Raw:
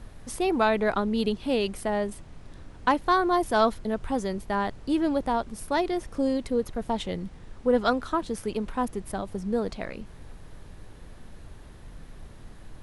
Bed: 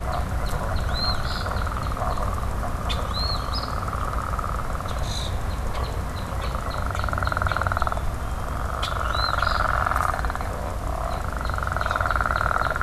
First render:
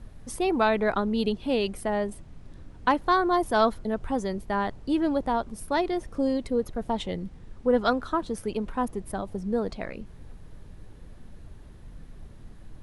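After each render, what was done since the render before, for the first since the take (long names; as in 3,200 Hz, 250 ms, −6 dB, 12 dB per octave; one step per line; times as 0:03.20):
broadband denoise 6 dB, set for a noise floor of −47 dBFS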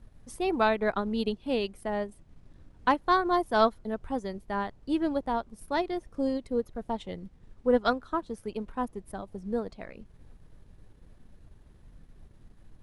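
transient designer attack −1 dB, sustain −5 dB
expander for the loud parts 1.5 to 1, over −33 dBFS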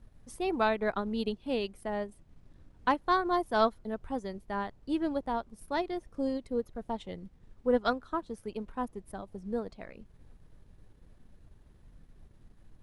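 level −3 dB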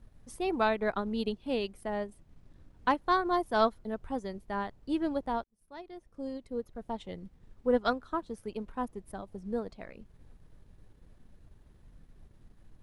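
0:05.44–0:07.21: fade in linear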